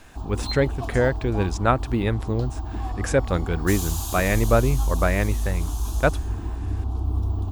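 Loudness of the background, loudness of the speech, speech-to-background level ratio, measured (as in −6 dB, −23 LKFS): −29.0 LKFS, −24.5 LKFS, 4.5 dB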